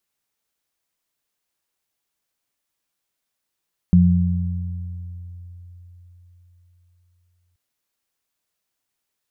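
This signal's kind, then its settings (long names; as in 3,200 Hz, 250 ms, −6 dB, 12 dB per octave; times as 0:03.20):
harmonic partials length 3.63 s, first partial 88.3 Hz, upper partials 6 dB, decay 4.36 s, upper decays 1.84 s, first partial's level −15 dB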